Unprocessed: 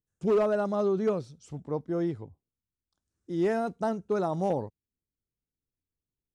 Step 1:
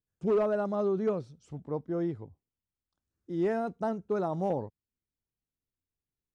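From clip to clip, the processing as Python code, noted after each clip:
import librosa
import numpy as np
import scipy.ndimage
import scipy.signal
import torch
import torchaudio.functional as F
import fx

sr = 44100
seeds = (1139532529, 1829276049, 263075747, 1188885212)

y = fx.high_shelf(x, sr, hz=3600.0, db=-9.0)
y = y * 10.0 ** (-2.0 / 20.0)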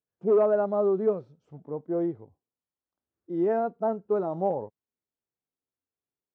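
y = fx.hpss(x, sr, part='percussive', gain_db=-9)
y = fx.bandpass_q(y, sr, hz=600.0, q=0.78)
y = y * 10.0 ** (6.5 / 20.0)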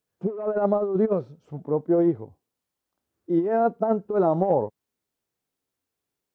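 y = fx.over_compress(x, sr, threshold_db=-27.0, ratio=-0.5)
y = y * 10.0 ** (6.5 / 20.0)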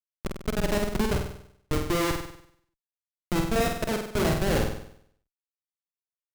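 y = fx.schmitt(x, sr, flips_db=-19.5)
y = fx.room_flutter(y, sr, wall_m=8.3, rt60_s=0.66)
y = y * 10.0 ** (1.5 / 20.0)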